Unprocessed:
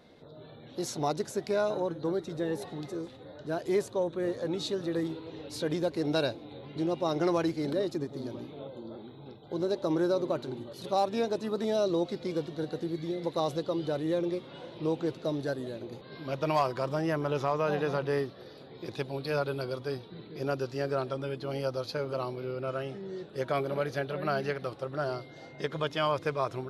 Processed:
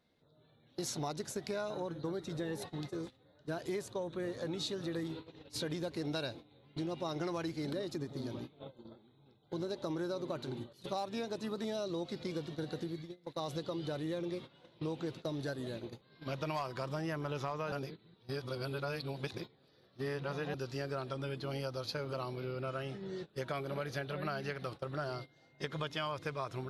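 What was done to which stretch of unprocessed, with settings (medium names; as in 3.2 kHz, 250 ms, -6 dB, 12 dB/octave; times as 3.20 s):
12.81–13.56 s: dip -11 dB, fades 0.33 s
17.72–20.54 s: reverse
whole clip: gate -40 dBFS, range -17 dB; peaking EQ 480 Hz -6 dB 2.2 oct; compression 4:1, threshold -38 dBFS; trim +2.5 dB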